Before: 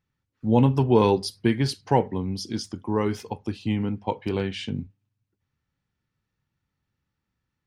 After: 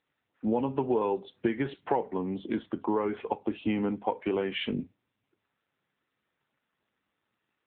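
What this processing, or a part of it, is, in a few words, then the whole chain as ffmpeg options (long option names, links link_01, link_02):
voicemail: -af "highpass=330,lowpass=2600,acompressor=threshold=-33dB:ratio=6,volume=8.5dB" -ar 8000 -c:a libopencore_amrnb -b:a 7950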